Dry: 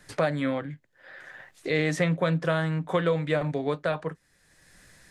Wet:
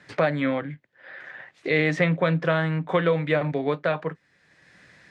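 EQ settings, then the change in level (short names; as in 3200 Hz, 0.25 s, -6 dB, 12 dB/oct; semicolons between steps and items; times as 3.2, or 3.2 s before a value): HPF 110 Hz; LPF 3900 Hz 12 dB/oct; bell 2200 Hz +3.5 dB 0.63 oct; +3.0 dB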